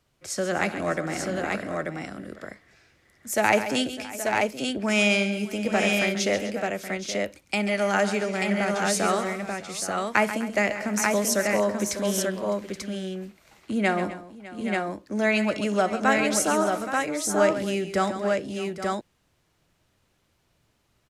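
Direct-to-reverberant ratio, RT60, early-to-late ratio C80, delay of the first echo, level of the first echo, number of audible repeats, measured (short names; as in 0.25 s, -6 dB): none, none, none, 62 ms, -19.5 dB, 6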